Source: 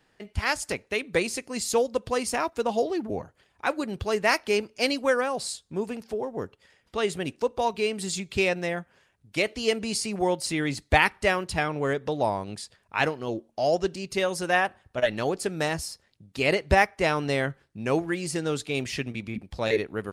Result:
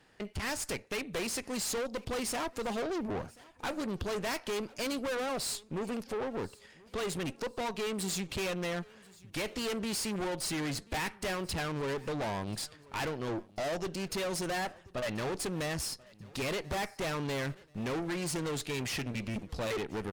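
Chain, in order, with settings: in parallel at -1 dB: compression, threshold -30 dBFS, peak gain reduction 15 dB; on the sum: valve stage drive 32 dB, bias 0.65; feedback delay 1035 ms, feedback 38%, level -23.5 dB

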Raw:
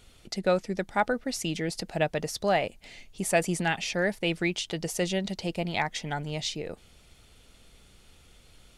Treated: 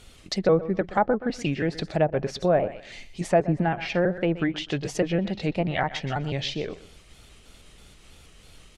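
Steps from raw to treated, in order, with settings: pitch shift switched off and on -2 st, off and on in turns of 162 ms; feedback delay 124 ms, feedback 20%, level -16 dB; low-pass that closes with the level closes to 950 Hz, closed at -23.5 dBFS; trim +5.5 dB

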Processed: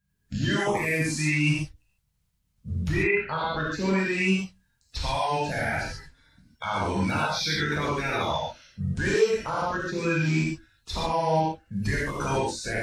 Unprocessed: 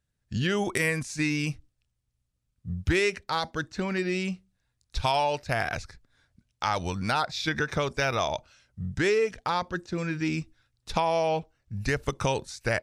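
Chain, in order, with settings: coarse spectral quantiser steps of 30 dB; 2.91–3.62 s: low-pass 2 kHz -> 4.2 kHz 24 dB/octave; peak limiter -23 dBFS, peak gain reduction 11 dB; gated-style reverb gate 170 ms flat, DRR -6.5 dB

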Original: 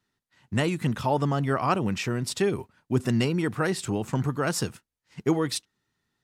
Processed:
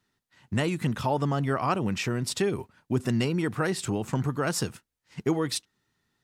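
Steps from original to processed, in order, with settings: compression 1.5:1, threshold -32 dBFS, peak gain reduction 5.5 dB; trim +2.5 dB

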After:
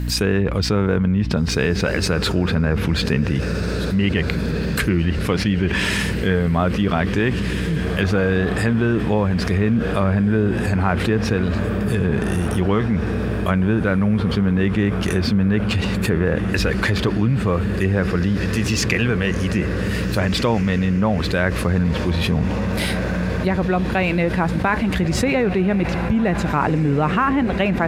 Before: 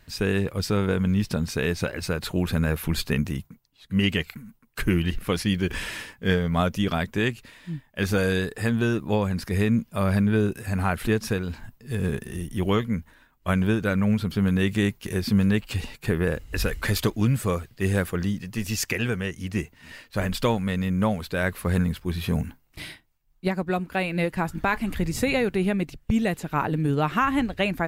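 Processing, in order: high-pass 54 Hz 24 dB/octave; low-pass that closes with the level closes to 2.1 kHz, closed at -19.5 dBFS; treble shelf 11 kHz +10 dB; in parallel at -8 dB: crossover distortion -39 dBFS; on the sum: hum 60 Hz, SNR 16 dB; on a send: echo that smears into a reverb 1701 ms, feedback 62%, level -14 dB; on the sum: level flattener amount 70%; trim -1.5 dB

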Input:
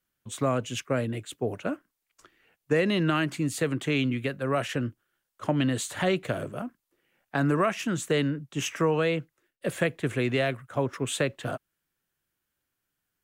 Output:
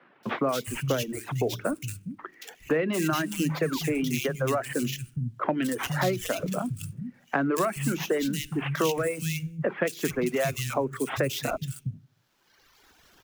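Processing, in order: on a send at -8 dB: Chebyshev band-stop 430–2200 Hz, order 5 + reverberation RT60 0.40 s, pre-delay 17 ms; on the sum: painted sound fall, 3.54–3.79 s, 850–4200 Hz -41 dBFS; in parallel at +1 dB: compression, threshold -37 dBFS, peak gain reduction 17 dB; on the sum: sample-rate reducer 9.1 kHz, jitter 20%; three bands offset in time mids, highs, lows 230/410 ms, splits 170/2300 Hz; reverb removal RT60 1.3 s; three bands compressed up and down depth 70%

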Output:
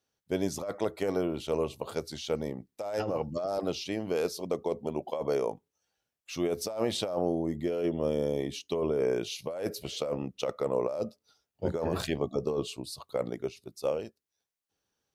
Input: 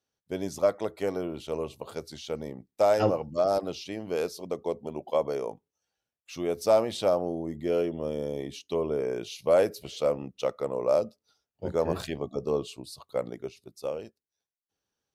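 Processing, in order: compressor with a negative ratio -29 dBFS, ratio -1

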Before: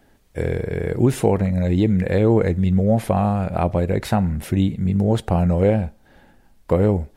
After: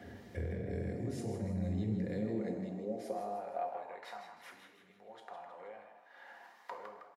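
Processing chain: 0.69–3.38 s: high-order bell 7.1 kHz +13.5 dB; compression 5:1, threshold -51 dBFS, peak gain reduction 33.5 dB; high-pass sweep 71 Hz -> 940 Hz, 1.38–3.99 s; frequency-shifting echo 158 ms, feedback 44%, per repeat +110 Hz, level -8 dB; reverberation RT60 0.85 s, pre-delay 3 ms, DRR 2.5 dB; trim -2.5 dB

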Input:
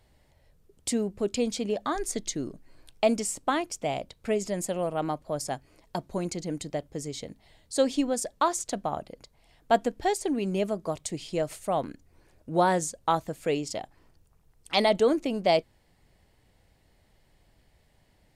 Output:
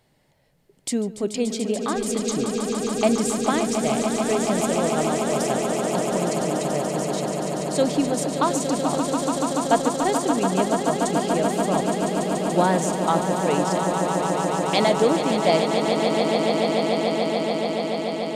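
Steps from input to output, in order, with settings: resonant low shelf 100 Hz -11.5 dB, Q 1.5; echo with a slow build-up 144 ms, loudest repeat 8, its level -8 dB; trim +2 dB

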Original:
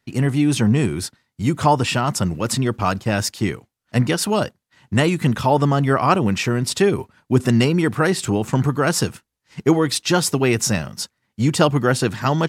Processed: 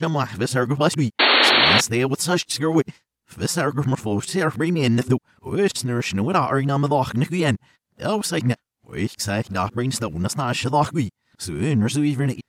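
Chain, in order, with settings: reverse the whole clip; painted sound noise, 1.19–1.81 s, 220–4500 Hz -12 dBFS; trim -3 dB

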